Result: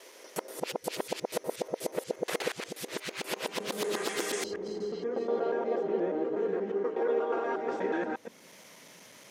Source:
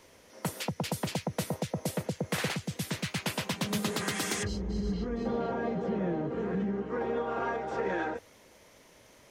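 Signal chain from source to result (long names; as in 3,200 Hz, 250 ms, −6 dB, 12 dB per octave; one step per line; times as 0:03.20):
reversed piece by piece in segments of 120 ms
high-pass filter sweep 390 Hz → 170 Hz, 0:07.21–0:08.55
one half of a high-frequency compander encoder only
level −2 dB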